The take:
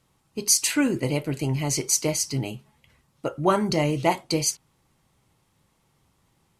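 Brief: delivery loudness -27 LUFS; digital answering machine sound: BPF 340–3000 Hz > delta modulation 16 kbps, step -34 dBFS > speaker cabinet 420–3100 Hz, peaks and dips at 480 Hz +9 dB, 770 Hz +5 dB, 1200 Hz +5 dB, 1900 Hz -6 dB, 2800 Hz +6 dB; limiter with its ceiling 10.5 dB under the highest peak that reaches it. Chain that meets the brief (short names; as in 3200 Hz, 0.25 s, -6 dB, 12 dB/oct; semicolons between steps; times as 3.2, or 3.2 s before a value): limiter -15.5 dBFS; BPF 340–3000 Hz; delta modulation 16 kbps, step -34 dBFS; speaker cabinet 420–3100 Hz, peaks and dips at 480 Hz +9 dB, 770 Hz +5 dB, 1200 Hz +5 dB, 1900 Hz -6 dB, 2800 Hz +6 dB; gain +5 dB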